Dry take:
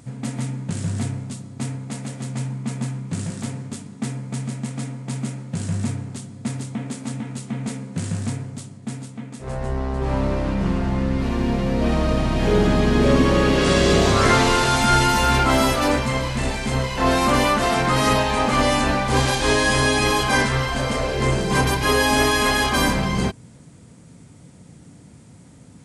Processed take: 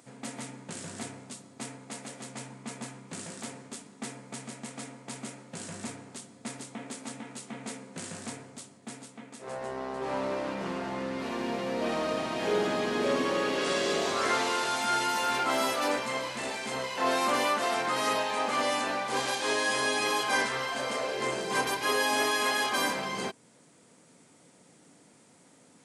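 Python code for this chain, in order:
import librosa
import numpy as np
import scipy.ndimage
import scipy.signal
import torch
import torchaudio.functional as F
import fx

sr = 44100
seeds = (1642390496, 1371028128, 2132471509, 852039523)

y = scipy.signal.sosfilt(scipy.signal.butter(2, 370.0, 'highpass', fs=sr, output='sos'), x)
y = fx.rider(y, sr, range_db=3, speed_s=2.0)
y = F.gain(torch.from_numpy(y), -7.5).numpy()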